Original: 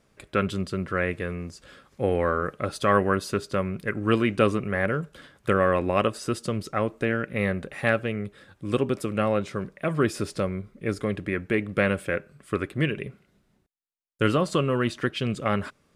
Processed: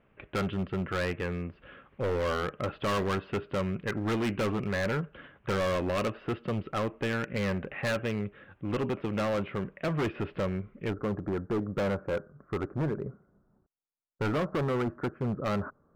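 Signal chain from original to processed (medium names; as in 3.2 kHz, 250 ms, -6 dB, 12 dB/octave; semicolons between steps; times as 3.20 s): elliptic low-pass 2.9 kHz, stop band 60 dB, from 10.90 s 1.4 kHz; overload inside the chain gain 26 dB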